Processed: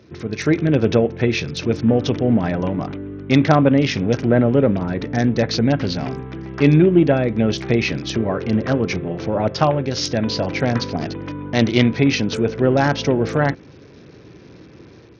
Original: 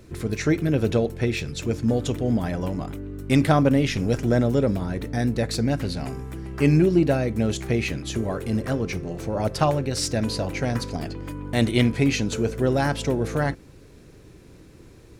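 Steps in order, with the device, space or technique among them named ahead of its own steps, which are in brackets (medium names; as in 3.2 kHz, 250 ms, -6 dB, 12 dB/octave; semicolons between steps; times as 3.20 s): Bluetooth headset (high-pass 110 Hz 12 dB/octave; level rider gain up to 6 dB; resampled via 16 kHz; trim +1 dB; SBC 64 kbps 48 kHz)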